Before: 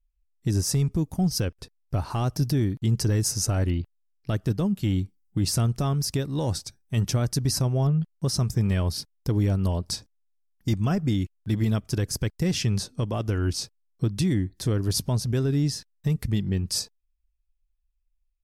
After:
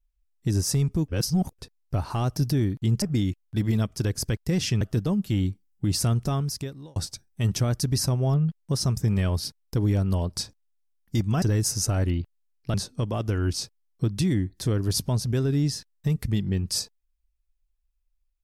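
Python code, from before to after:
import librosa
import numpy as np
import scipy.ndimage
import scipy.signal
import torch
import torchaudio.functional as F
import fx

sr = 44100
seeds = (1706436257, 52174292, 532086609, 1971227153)

y = fx.edit(x, sr, fx.reverse_span(start_s=1.08, length_s=0.45),
    fx.swap(start_s=3.02, length_s=1.32, other_s=10.95, other_length_s=1.79),
    fx.fade_out_span(start_s=5.82, length_s=0.67), tone=tone)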